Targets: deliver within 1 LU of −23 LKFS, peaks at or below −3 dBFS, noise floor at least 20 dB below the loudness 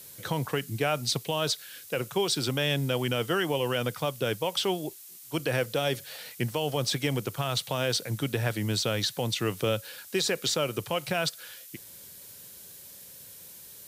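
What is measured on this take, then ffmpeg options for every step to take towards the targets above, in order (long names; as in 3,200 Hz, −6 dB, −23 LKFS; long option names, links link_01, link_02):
background noise floor −48 dBFS; target noise floor −49 dBFS; integrated loudness −29.0 LKFS; sample peak −16.0 dBFS; target loudness −23.0 LKFS
→ -af "afftdn=noise_reduction=6:noise_floor=-48"
-af "volume=6dB"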